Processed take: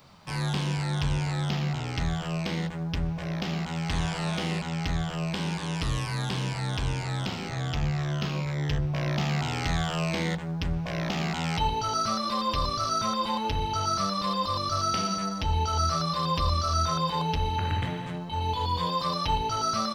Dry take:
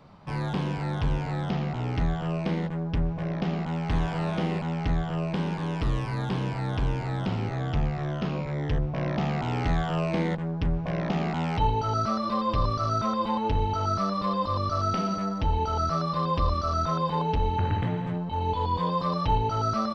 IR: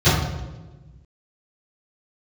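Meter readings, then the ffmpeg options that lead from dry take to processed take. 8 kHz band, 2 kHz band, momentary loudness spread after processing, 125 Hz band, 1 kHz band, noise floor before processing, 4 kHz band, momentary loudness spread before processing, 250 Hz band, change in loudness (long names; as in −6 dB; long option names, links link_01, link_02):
can't be measured, +3.0 dB, 5 LU, −1.0 dB, −0.5 dB, −32 dBFS, +8.0 dB, 3 LU, −2.5 dB, −0.5 dB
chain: -filter_complex "[0:a]crystalizer=i=8:c=0,asplit=2[link_01][link_02];[1:a]atrim=start_sample=2205,afade=type=out:start_time=0.18:duration=0.01,atrim=end_sample=8379[link_03];[link_02][link_03]afir=irnorm=-1:irlink=0,volume=-39dB[link_04];[link_01][link_04]amix=inputs=2:normalize=0,volume=-5dB"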